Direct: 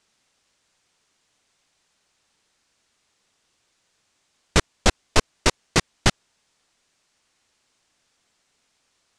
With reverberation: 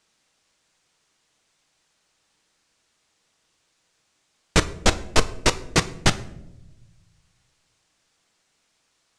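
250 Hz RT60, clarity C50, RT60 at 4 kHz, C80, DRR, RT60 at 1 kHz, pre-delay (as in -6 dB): 1.5 s, 16.5 dB, 0.50 s, 19.5 dB, 10.5 dB, 0.70 s, 6 ms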